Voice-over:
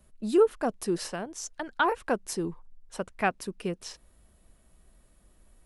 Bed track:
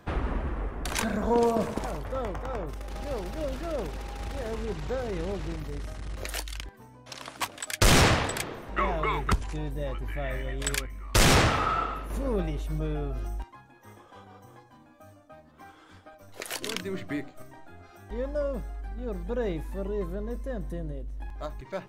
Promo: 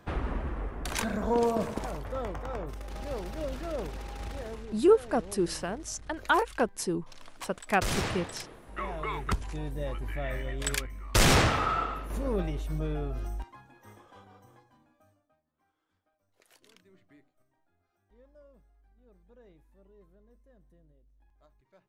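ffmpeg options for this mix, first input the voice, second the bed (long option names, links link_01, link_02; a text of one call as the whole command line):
ffmpeg -i stem1.wav -i stem2.wav -filter_complex "[0:a]adelay=4500,volume=0.5dB[link_01];[1:a]volume=7.5dB,afade=type=out:start_time=4.27:duration=0.44:silence=0.354813,afade=type=in:start_time=8.6:duration=1.22:silence=0.316228,afade=type=out:start_time=13.7:duration=1.7:silence=0.0530884[link_02];[link_01][link_02]amix=inputs=2:normalize=0" out.wav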